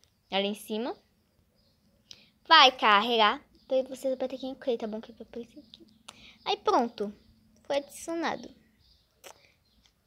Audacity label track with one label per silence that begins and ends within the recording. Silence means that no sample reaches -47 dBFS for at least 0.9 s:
0.950000	2.110000	silence